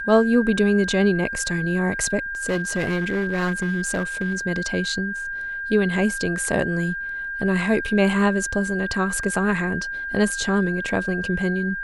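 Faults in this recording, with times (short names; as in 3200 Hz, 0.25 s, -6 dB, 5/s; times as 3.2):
tone 1600 Hz -27 dBFS
2.45–4.39 clipped -18.5 dBFS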